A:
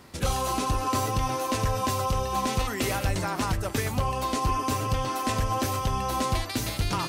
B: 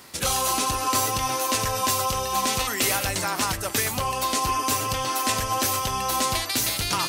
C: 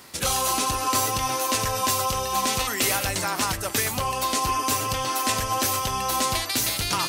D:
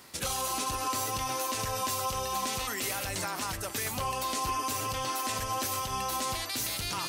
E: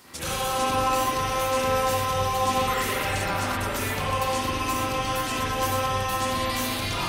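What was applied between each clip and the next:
spectral tilt +2.5 dB per octave; level +3 dB
no processing that can be heard
brickwall limiter −17 dBFS, peak gain reduction 7 dB; level −5.5 dB
spring reverb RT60 2 s, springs 40/52 ms, chirp 75 ms, DRR −8 dB

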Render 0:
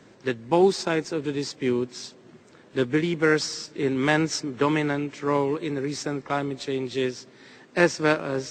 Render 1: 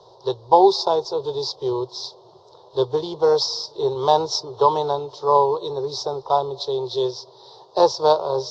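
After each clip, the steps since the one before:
drawn EQ curve 130 Hz 0 dB, 250 Hz −27 dB, 390 Hz +5 dB, 620 Hz +8 dB, 970 Hz +14 dB, 1,600 Hz −20 dB, 2,300 Hz −30 dB, 3,700 Hz +9 dB, 5,200 Hz +8 dB, 8,000 Hz −17 dB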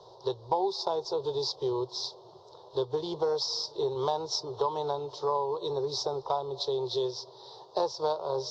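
downward compressor 4 to 1, threshold −24 dBFS, peak gain reduction 13.5 dB
level −3 dB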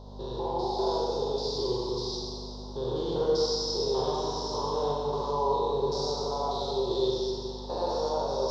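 spectrum averaged block by block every 200 ms
mains hum 50 Hz, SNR 11 dB
four-comb reverb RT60 2.1 s, combs from 32 ms, DRR −3 dB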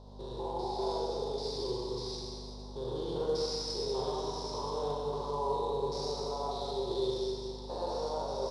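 on a send: single-tap delay 199 ms −11.5 dB
on the sum: level −6 dB
IMA ADPCM 88 kbit/s 22,050 Hz

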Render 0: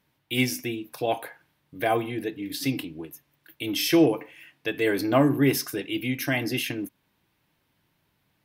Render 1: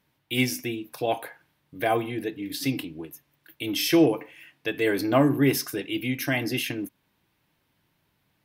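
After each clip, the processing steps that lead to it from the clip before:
no processing that can be heard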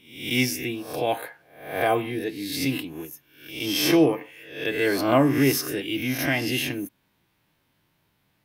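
peak hold with a rise ahead of every peak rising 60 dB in 0.59 s

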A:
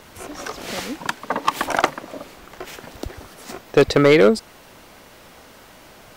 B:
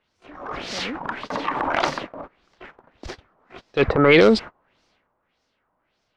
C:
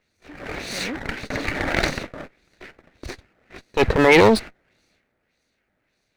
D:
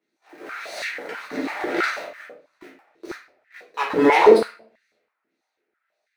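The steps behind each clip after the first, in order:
auto-filter low-pass sine 1.7 Hz 1,000–5,500 Hz; noise gate −32 dBFS, range −27 dB; transient designer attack −9 dB, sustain +7 dB; level −1 dB
lower of the sound and its delayed copy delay 0.48 ms; level +2 dB
in parallel at −9.5 dB: bit-depth reduction 6 bits, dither none; on the sum: rectangular room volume 50 cubic metres, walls mixed, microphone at 1.2 metres; high-pass on a step sequencer 6.1 Hz 290–1,800 Hz; level −14.5 dB

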